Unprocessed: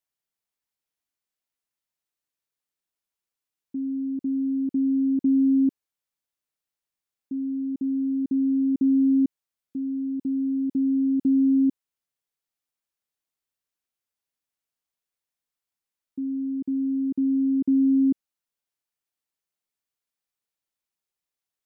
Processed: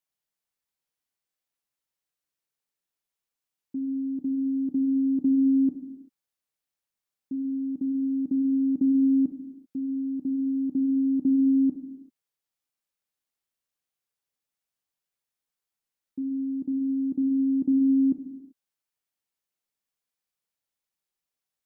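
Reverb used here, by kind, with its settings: non-linear reverb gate 0.41 s falling, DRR 6.5 dB; gain -1 dB

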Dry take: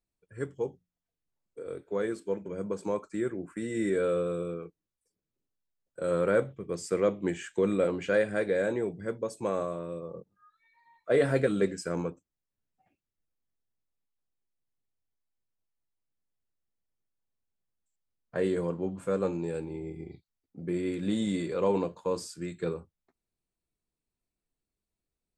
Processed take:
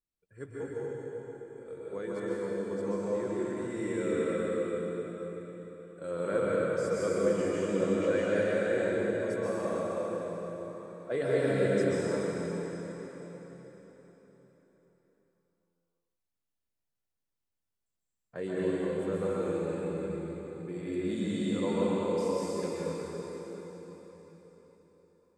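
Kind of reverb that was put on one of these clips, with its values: plate-style reverb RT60 4.4 s, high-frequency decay 0.9×, pre-delay 0.115 s, DRR -7.5 dB; gain -8.5 dB

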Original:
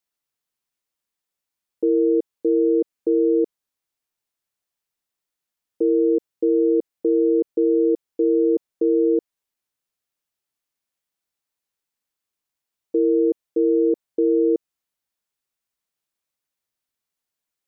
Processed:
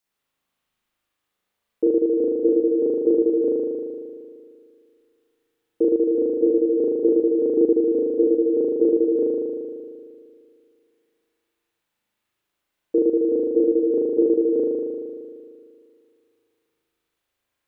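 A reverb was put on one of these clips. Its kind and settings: spring tank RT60 2.2 s, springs 38 ms, chirp 35 ms, DRR -8.5 dB; gain +1.5 dB

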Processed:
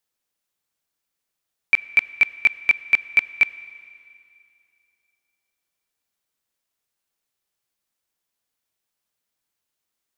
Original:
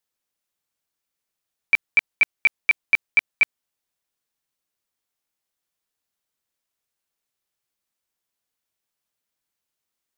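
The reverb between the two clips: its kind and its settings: Schroeder reverb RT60 2.5 s, combs from 29 ms, DRR 17 dB; gain +1.5 dB

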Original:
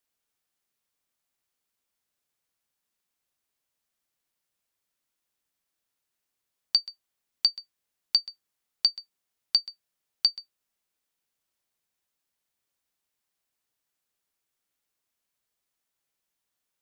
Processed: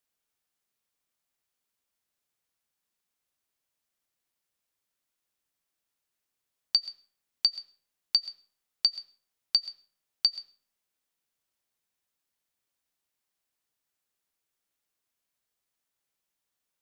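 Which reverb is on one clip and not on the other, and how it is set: digital reverb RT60 0.51 s, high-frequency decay 0.7×, pre-delay 65 ms, DRR 19 dB; gain -1.5 dB

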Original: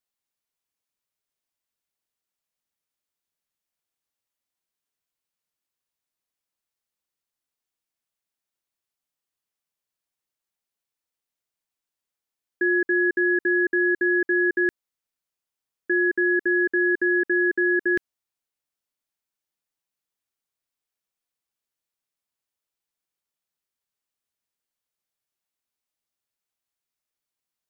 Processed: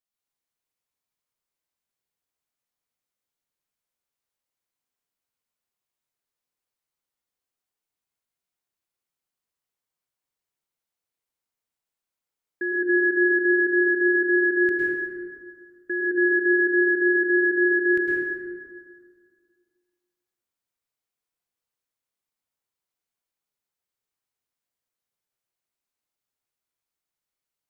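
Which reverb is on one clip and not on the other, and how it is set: plate-style reverb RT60 2 s, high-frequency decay 0.45×, pre-delay 95 ms, DRR -4.5 dB; gain -5.5 dB

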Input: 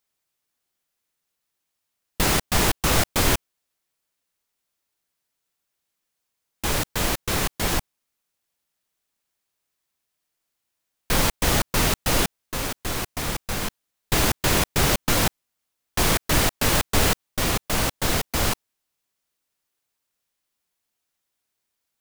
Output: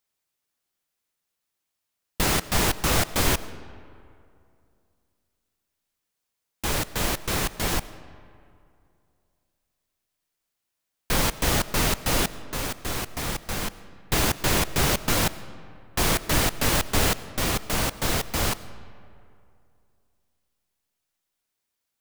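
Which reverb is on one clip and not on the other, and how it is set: digital reverb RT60 2.5 s, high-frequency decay 0.55×, pre-delay 55 ms, DRR 16 dB; gain -2 dB

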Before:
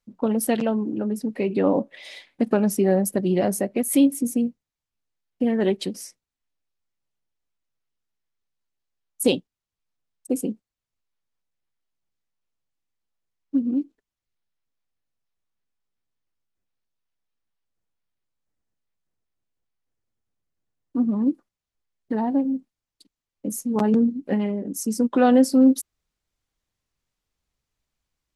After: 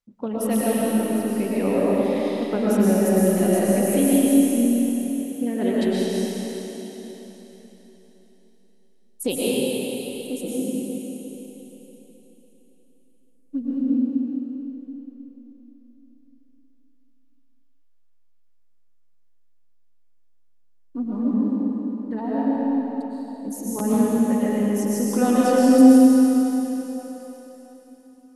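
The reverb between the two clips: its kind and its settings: digital reverb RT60 3.9 s, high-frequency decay 1×, pre-delay 80 ms, DRR -8 dB; gain -6 dB

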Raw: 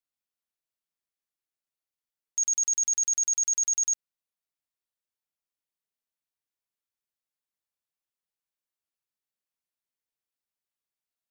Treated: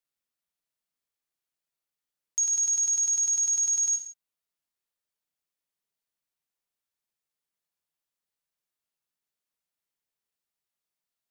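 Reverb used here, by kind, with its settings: non-linear reverb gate 0.21 s falling, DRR 5.5 dB; gain +1 dB

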